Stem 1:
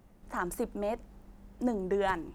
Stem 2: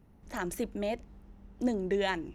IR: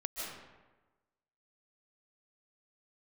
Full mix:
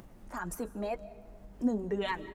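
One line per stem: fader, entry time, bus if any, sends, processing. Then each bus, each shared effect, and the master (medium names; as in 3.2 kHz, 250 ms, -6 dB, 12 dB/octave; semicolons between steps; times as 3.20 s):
-0.5 dB, 0.00 s, send -17.5 dB, peak limiter -24.5 dBFS, peak gain reduction 6.5 dB
+2.0 dB, 4.2 ms, send -15 dB, expander on every frequency bin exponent 3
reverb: on, RT60 1.2 s, pre-delay 110 ms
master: flange 2 Hz, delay 5.8 ms, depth 3.3 ms, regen -45%; upward compressor, threshold -43 dBFS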